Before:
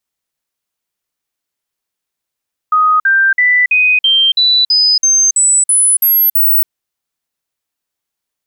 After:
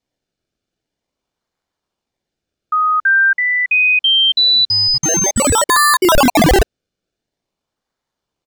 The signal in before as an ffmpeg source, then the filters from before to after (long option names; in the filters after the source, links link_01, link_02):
-f lavfi -i "aevalsrc='0.447*clip(min(mod(t,0.33),0.28-mod(t,0.33))/0.005,0,1)*sin(2*PI*1250*pow(2,floor(t/0.33)/3)*mod(t,0.33))':duration=3.96:sample_rate=44100"
-filter_complex "[0:a]acrossover=split=2500|5000|6600[link_01][link_02][link_03][link_04];[link_01]highpass=frequency=1200:width=0.5412,highpass=frequency=1200:width=1.3066[link_05];[link_02]aecho=1:1:1.7:0.81[link_06];[link_04]acrusher=samples=30:mix=1:aa=0.000001:lfo=1:lforange=30:lforate=0.47[link_07];[link_05][link_06][link_03][link_07]amix=inputs=4:normalize=0"